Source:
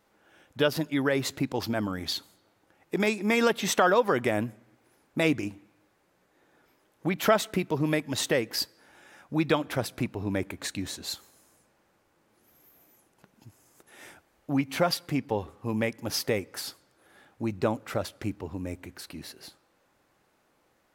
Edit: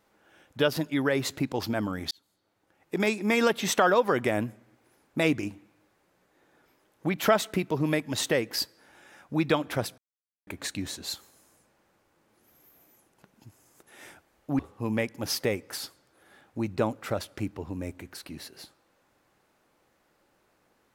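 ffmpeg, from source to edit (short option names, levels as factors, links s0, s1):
-filter_complex "[0:a]asplit=5[s0][s1][s2][s3][s4];[s0]atrim=end=2.11,asetpts=PTS-STARTPTS,afade=t=out:st=2.106:d=0.004:c=hsin[s5];[s1]atrim=start=2.11:end=9.98,asetpts=PTS-STARTPTS,afade=t=in:d=0.95,afade=t=out:st=7.866:d=0.004:c=hsin[s6];[s2]atrim=start=9.98:end=10.47,asetpts=PTS-STARTPTS,volume=0[s7];[s3]atrim=start=10.47:end=14.592,asetpts=PTS-STARTPTS,afade=t=in:d=0.004:c=hsin[s8];[s4]atrim=start=15.428[s9];[s5][s6][s7][s8]concat=n=4:v=0:a=1[s10];[s10][s9]acrossfade=d=0.004:c1=hsin:c2=hsin"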